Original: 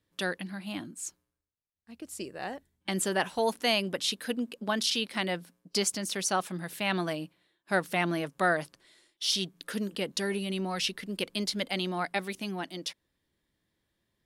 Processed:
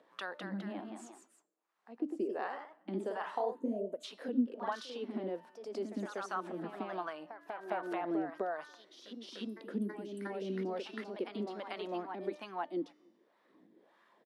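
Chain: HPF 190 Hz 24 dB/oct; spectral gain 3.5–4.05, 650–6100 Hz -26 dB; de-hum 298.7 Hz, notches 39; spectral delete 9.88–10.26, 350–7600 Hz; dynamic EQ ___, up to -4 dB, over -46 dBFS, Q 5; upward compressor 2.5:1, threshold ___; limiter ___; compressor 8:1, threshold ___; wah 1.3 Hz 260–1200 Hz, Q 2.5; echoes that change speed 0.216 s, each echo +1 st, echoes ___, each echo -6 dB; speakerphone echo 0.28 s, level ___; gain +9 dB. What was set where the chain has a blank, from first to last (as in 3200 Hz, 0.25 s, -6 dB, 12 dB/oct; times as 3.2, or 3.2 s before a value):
2000 Hz, -52 dBFS, -21.5 dBFS, -36 dBFS, 2, -29 dB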